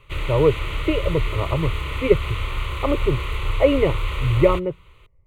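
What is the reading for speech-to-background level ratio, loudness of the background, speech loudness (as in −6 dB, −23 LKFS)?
5.5 dB, −28.0 LKFS, −22.5 LKFS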